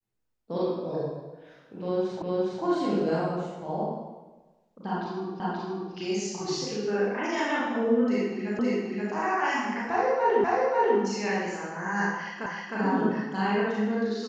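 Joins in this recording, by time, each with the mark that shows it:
2.22 repeat of the last 0.41 s
5.4 repeat of the last 0.53 s
8.59 repeat of the last 0.53 s
10.44 repeat of the last 0.54 s
12.46 repeat of the last 0.31 s

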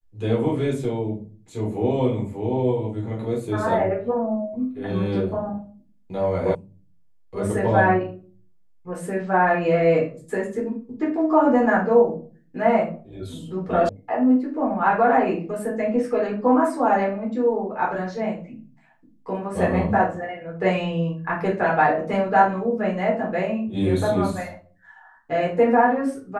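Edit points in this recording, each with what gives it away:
6.55 sound cut off
13.89 sound cut off

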